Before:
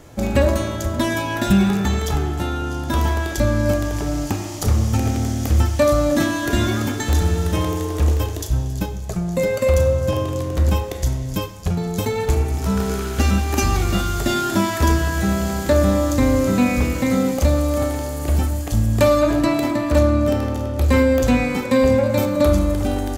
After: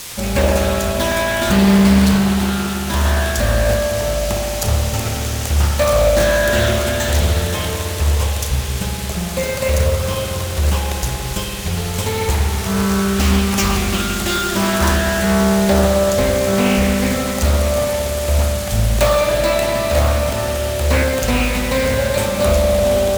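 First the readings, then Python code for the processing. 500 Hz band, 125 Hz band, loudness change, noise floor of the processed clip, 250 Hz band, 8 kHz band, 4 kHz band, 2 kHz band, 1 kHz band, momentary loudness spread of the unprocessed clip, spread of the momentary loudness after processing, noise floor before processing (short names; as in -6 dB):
+3.0 dB, +1.5 dB, +2.5 dB, -23 dBFS, +1.0 dB, +7.5 dB, +8.0 dB, +6.0 dB, +3.0 dB, 7 LU, 7 LU, -28 dBFS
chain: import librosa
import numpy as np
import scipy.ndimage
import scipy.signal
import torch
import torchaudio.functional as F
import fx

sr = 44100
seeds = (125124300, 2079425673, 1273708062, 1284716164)

y = fx.quant_dither(x, sr, seeds[0], bits=6, dither='triangular')
y = fx.peak_eq(y, sr, hz=290.0, db=-14.5, octaves=0.24)
y = np.repeat(y[::2], 2)[:len(y)]
y = fx.high_shelf(y, sr, hz=2200.0, db=7.5)
y = fx.rev_spring(y, sr, rt60_s=3.9, pass_ms=(56,), chirp_ms=35, drr_db=-1.0)
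y = fx.doppler_dist(y, sr, depth_ms=0.49)
y = F.gain(torch.from_numpy(y), -1.0).numpy()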